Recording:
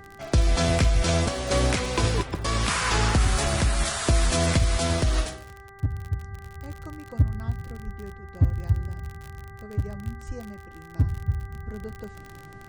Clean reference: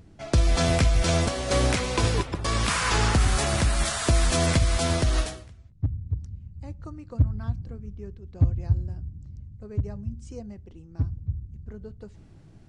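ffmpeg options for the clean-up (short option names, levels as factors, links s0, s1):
-filter_complex "[0:a]adeclick=t=4,bandreject=f=394:t=h:w=4,bandreject=f=788:t=h:w=4,bandreject=f=1182:t=h:w=4,bandreject=f=1576:t=h:w=4,bandreject=f=1970:t=h:w=4,asplit=3[s0][s1][s2];[s0]afade=t=out:st=3.43:d=0.02[s3];[s1]highpass=f=140:w=0.5412,highpass=f=140:w=1.3066,afade=t=in:st=3.43:d=0.02,afade=t=out:st=3.55:d=0.02[s4];[s2]afade=t=in:st=3.55:d=0.02[s5];[s3][s4][s5]amix=inputs=3:normalize=0,asplit=3[s6][s7][s8];[s6]afade=t=out:st=7.85:d=0.02[s9];[s7]highpass=f=140:w=0.5412,highpass=f=140:w=1.3066,afade=t=in:st=7.85:d=0.02,afade=t=out:st=7.97:d=0.02[s10];[s8]afade=t=in:st=7.97:d=0.02[s11];[s9][s10][s11]amix=inputs=3:normalize=0,asplit=3[s12][s13][s14];[s12]afade=t=out:st=10.27:d=0.02[s15];[s13]highpass=f=140:w=0.5412,highpass=f=140:w=1.3066,afade=t=in:st=10.27:d=0.02,afade=t=out:st=10.39:d=0.02[s16];[s14]afade=t=in:st=10.39:d=0.02[s17];[s15][s16][s17]amix=inputs=3:normalize=0,asetnsamples=n=441:p=0,asendcmd='10.95 volume volume -4dB',volume=1"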